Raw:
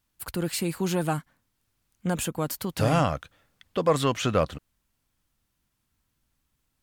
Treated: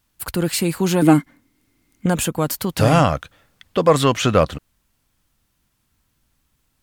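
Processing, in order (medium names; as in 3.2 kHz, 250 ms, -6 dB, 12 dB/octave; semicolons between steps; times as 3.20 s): 1.02–2.06 s: small resonant body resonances 290/2100 Hz, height 16 dB, ringing for 35 ms; trim +8 dB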